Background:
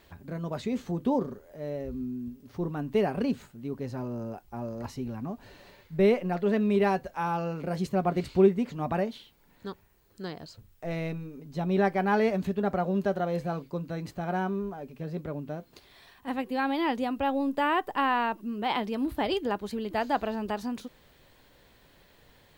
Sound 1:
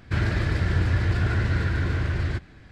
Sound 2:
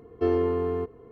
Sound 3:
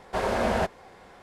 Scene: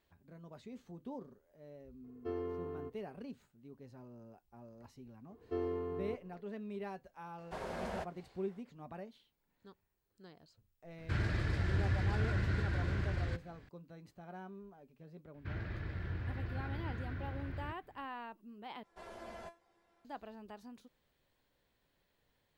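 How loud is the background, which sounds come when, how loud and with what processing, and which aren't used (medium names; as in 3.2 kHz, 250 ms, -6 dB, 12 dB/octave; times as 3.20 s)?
background -19 dB
2.04 s: add 2 -16 dB + peaking EQ 1.4 kHz +2.5 dB 0.37 oct
5.30 s: add 2 -13.5 dB
7.38 s: add 3 -16 dB
10.98 s: add 1 -10.5 dB
15.34 s: add 1 -17.5 dB + low-pass 3.2 kHz
18.83 s: replace with 3 -10.5 dB + feedback comb 340 Hz, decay 0.22 s, mix 90%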